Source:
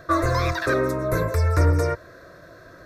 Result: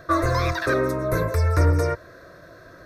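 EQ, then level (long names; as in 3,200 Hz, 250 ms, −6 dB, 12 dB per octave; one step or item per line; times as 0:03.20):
notch filter 7,300 Hz, Q 13
0.0 dB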